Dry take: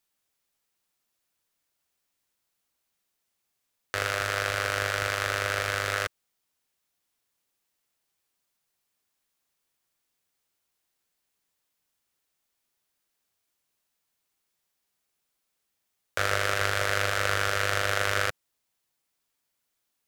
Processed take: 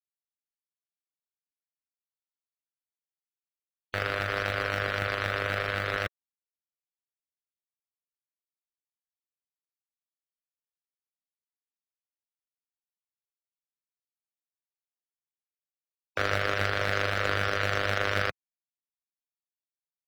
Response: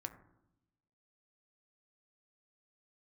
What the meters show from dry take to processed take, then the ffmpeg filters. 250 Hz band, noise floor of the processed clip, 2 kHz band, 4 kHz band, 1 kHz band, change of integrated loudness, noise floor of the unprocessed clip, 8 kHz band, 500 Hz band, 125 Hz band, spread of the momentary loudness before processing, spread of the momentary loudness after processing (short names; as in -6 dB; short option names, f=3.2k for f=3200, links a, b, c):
+5.0 dB, under -85 dBFS, -1.5 dB, -3.0 dB, -1.5 dB, -1.5 dB, -80 dBFS, -12.5 dB, 0.0 dB, +1.0 dB, 5 LU, 5 LU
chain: -filter_complex "[0:a]afftfilt=real='re*gte(hypot(re,im),0.0224)':imag='im*gte(hypot(re,im),0.0224)':win_size=1024:overlap=0.75,asplit=2[a][b];[b]acrusher=samples=26:mix=1:aa=0.000001,volume=-11dB[c];[a][c]amix=inputs=2:normalize=0,volume=-1.5dB"